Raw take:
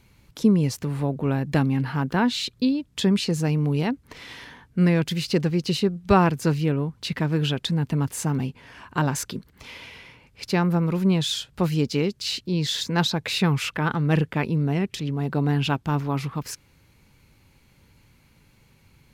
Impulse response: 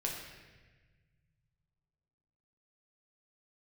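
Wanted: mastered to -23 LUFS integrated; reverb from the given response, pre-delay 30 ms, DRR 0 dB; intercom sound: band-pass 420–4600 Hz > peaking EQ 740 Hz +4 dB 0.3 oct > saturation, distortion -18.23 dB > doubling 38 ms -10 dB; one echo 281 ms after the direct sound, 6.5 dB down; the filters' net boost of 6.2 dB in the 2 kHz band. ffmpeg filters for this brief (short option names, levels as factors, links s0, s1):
-filter_complex "[0:a]equalizer=f=2000:t=o:g=8.5,aecho=1:1:281:0.473,asplit=2[s0][s1];[1:a]atrim=start_sample=2205,adelay=30[s2];[s1][s2]afir=irnorm=-1:irlink=0,volume=0.75[s3];[s0][s3]amix=inputs=2:normalize=0,highpass=420,lowpass=4600,equalizer=f=740:t=o:w=0.3:g=4,asoftclip=threshold=0.335,asplit=2[s4][s5];[s5]adelay=38,volume=0.316[s6];[s4][s6]amix=inputs=2:normalize=0,volume=1.06"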